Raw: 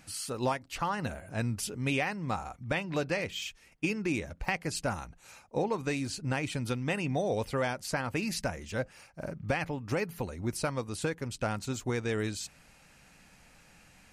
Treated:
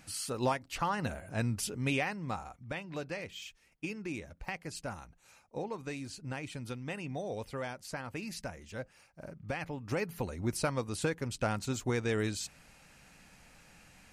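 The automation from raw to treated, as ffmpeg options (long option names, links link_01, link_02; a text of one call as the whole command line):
ffmpeg -i in.wav -af "volume=7.5dB,afade=type=out:start_time=1.76:duration=0.94:silence=0.421697,afade=type=in:start_time=9.43:duration=0.91:silence=0.398107" out.wav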